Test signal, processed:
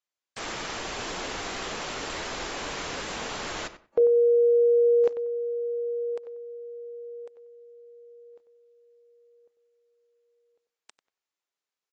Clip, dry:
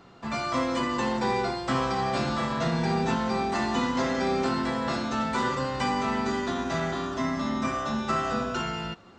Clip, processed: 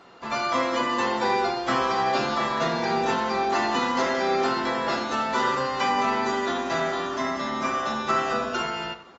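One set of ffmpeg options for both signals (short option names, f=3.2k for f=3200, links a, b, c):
-filter_complex "[0:a]bass=f=250:g=-14,treble=f=4k:g=-2,asplit=2[a][b];[b]adelay=94,lowpass=f=2.3k:p=1,volume=-11.5dB,asplit=2[c][d];[d]adelay=94,lowpass=f=2.3k:p=1,volume=0.21,asplit=2[e][f];[f]adelay=94,lowpass=f=2.3k:p=1,volume=0.21[g];[c][e][g]amix=inputs=3:normalize=0[h];[a][h]amix=inputs=2:normalize=0,volume=4dB" -ar 24000 -c:a aac -b:a 24k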